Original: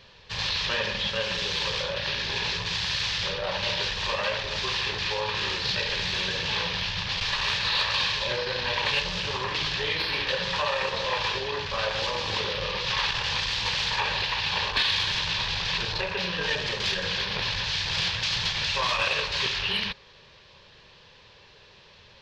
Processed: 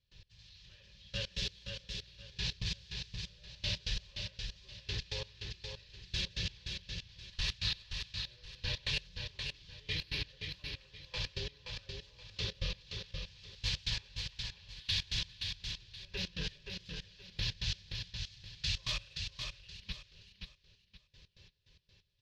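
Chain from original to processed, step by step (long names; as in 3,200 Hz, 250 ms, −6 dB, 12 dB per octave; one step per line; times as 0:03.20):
guitar amp tone stack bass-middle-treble 10-0-1
notch comb filter 230 Hz
gate pattern ".x........x" 132 BPM −24 dB
high-shelf EQ 2,600 Hz +7.5 dB
repeating echo 524 ms, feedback 28%, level −5.5 dB
level +11.5 dB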